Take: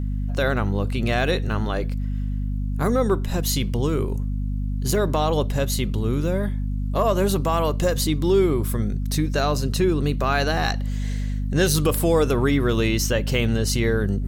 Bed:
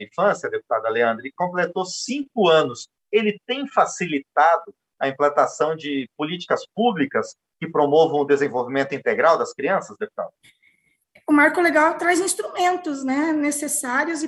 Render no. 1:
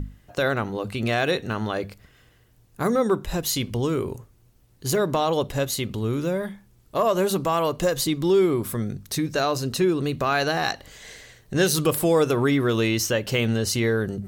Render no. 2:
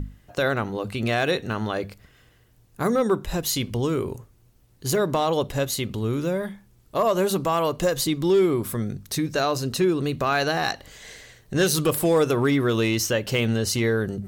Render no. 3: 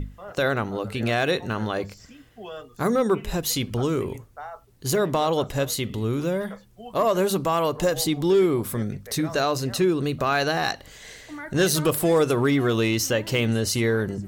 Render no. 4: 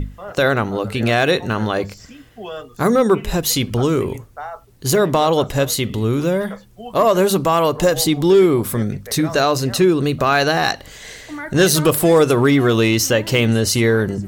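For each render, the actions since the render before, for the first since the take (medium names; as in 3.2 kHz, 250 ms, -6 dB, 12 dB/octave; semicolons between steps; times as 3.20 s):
hum notches 50/100/150/200/250 Hz
overload inside the chain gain 13 dB
add bed -22.5 dB
trim +7 dB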